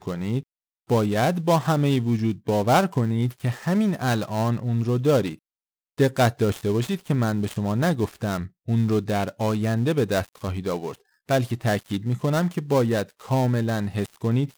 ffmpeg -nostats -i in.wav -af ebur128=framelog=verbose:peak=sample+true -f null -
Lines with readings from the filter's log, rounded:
Integrated loudness:
  I:         -23.9 LUFS
  Threshold: -34.1 LUFS
Loudness range:
  LRA:         2.7 LU
  Threshold: -44.2 LUFS
  LRA low:   -25.4 LUFS
  LRA high:  -22.7 LUFS
Sample peak:
  Peak:       -5.4 dBFS
True peak:
  Peak:       -5.3 dBFS